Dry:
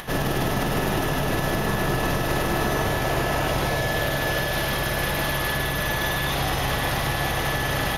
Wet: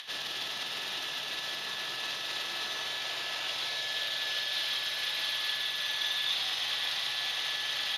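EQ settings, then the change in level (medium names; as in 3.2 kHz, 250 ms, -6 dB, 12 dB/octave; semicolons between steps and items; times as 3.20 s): band-pass filter 3.8 kHz, Q 2.7; +3.5 dB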